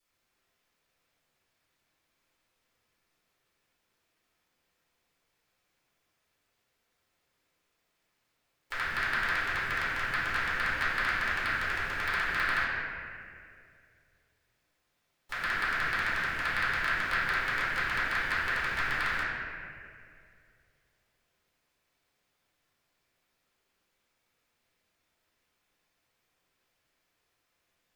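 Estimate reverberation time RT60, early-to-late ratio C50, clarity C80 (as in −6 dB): 2.3 s, −2.5 dB, −0.5 dB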